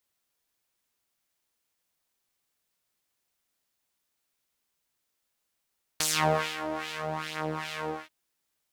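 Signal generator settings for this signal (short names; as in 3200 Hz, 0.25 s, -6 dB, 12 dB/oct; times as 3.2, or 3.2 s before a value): synth patch with filter wobble D#3, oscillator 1 saw, interval 0 st, oscillator 2 level -3 dB, noise -11 dB, filter bandpass, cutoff 1300 Hz, Q 1.4, filter envelope 2 oct, filter decay 0.26 s, filter sustain 5%, attack 2.9 ms, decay 0.56 s, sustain -13 dB, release 0.20 s, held 1.89 s, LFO 2.5 Hz, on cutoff 1.2 oct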